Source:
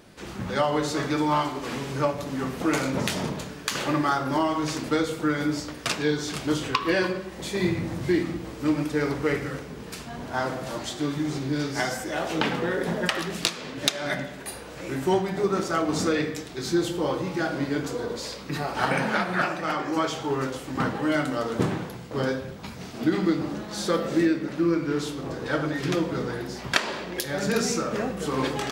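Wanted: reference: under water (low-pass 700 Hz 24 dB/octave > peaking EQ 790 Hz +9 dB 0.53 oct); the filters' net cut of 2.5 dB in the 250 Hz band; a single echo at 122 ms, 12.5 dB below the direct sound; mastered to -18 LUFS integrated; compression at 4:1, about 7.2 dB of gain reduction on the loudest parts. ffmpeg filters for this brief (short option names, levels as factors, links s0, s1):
-af "equalizer=f=250:t=o:g=-4,acompressor=threshold=0.0398:ratio=4,lowpass=f=700:w=0.5412,lowpass=f=700:w=1.3066,equalizer=f=790:t=o:w=0.53:g=9,aecho=1:1:122:0.237,volume=5.96"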